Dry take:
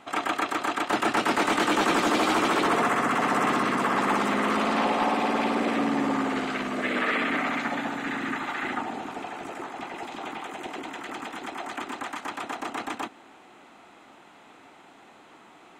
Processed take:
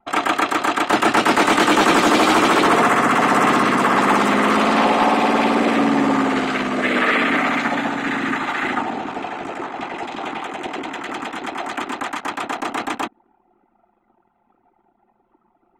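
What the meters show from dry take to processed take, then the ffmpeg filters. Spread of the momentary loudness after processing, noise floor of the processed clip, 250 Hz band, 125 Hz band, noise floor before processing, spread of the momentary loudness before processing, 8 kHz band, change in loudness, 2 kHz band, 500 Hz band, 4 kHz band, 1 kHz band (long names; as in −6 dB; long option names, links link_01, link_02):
14 LU, −65 dBFS, +8.5 dB, +8.5 dB, −52 dBFS, 14 LU, +8.5 dB, +8.5 dB, +8.5 dB, +8.5 dB, +8.5 dB, +8.5 dB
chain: -af "anlmdn=0.251,volume=8.5dB"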